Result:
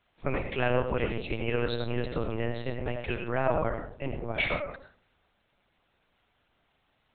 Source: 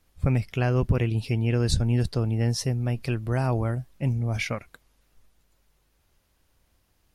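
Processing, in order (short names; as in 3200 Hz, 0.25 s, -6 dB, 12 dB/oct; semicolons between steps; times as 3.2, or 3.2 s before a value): octaver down 2 oct, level +2 dB; Bessel high-pass 410 Hz, order 2; digital reverb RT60 0.49 s, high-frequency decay 0.4×, pre-delay 45 ms, DRR 4.5 dB; LPC vocoder at 8 kHz pitch kept; gain +2.5 dB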